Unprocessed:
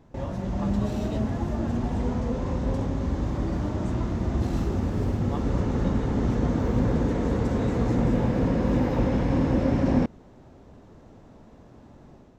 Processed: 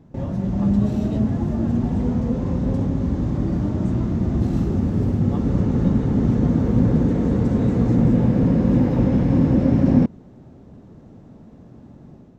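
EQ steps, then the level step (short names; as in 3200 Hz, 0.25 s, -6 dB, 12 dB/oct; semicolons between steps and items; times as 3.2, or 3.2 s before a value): bell 170 Hz +11.5 dB 2.4 oct; notch 980 Hz, Q 28; -2.5 dB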